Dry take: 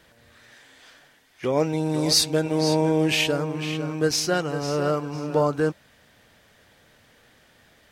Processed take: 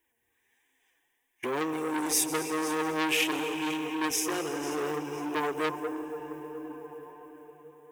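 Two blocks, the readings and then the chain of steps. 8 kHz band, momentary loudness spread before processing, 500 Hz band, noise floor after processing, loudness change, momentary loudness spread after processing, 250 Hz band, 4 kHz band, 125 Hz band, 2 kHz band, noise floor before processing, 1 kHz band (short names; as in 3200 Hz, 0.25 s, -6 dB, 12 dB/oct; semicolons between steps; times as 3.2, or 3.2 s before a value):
-2.5 dB, 8 LU, -9.0 dB, -77 dBFS, -7.0 dB, 17 LU, -6.0 dB, -9.0 dB, -19.0 dB, -2.0 dB, -58 dBFS, -2.0 dB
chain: gate -44 dBFS, range -23 dB; digital reverb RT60 5 s, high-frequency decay 0.75×, pre-delay 95 ms, DRR 7 dB; in parallel at 0 dB: compressor, threshold -37 dBFS, peak gain reduction 20.5 dB; on the sum: low shelf 90 Hz -9 dB; companded quantiser 8-bit; fixed phaser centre 900 Hz, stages 8; flange 1.5 Hz, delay 2.8 ms, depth 3.7 ms, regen +47%; high shelf 6600 Hz +8.5 dB; core saturation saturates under 2600 Hz; gain +2 dB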